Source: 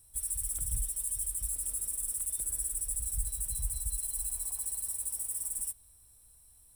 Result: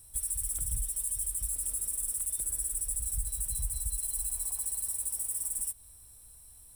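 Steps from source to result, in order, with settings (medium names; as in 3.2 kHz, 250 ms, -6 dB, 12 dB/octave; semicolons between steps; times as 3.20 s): compression 2:1, threshold -39 dBFS, peak gain reduction 7.5 dB; trim +6 dB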